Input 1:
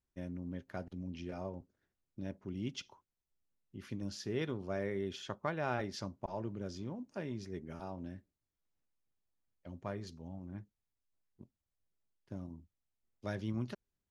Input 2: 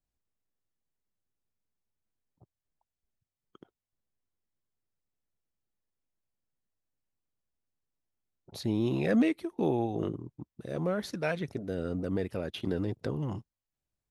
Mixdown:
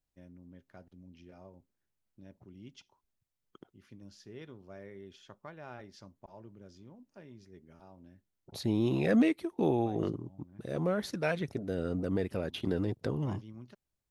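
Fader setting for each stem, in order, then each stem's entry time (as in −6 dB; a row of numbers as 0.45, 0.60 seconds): −11.0, 0.0 decibels; 0.00, 0.00 seconds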